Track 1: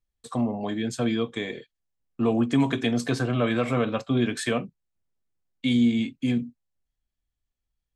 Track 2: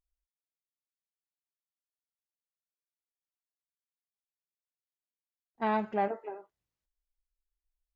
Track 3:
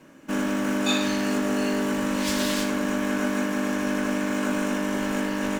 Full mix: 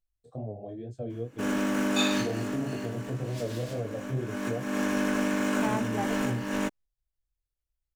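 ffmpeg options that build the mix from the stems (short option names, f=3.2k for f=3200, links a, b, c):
-filter_complex "[0:a]firequalizer=gain_entry='entry(130,0);entry(190,-17);entry(330,-7);entry(640,-3);entry(990,-26)':delay=0.05:min_phase=1,flanger=delay=18.5:depth=7.6:speed=2.1,volume=0.5dB,asplit=2[a][b];[1:a]volume=-3.5dB[c];[2:a]adelay=1100,volume=6.5dB,afade=t=out:st=2.22:d=0.77:silence=0.398107,afade=t=in:st=4.14:d=0.67:silence=0.375837[d];[b]apad=whole_len=295259[e];[d][e]sidechaincompress=threshold=-35dB:ratio=8:attack=9.9:release=321[f];[a][c][f]amix=inputs=3:normalize=0"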